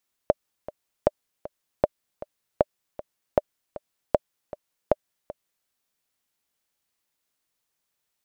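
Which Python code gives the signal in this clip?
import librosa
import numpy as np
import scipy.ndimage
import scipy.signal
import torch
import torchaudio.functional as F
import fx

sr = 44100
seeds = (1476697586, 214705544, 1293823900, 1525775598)

y = fx.click_track(sr, bpm=156, beats=2, bars=7, hz=598.0, accent_db=17.0, level_db=-4.0)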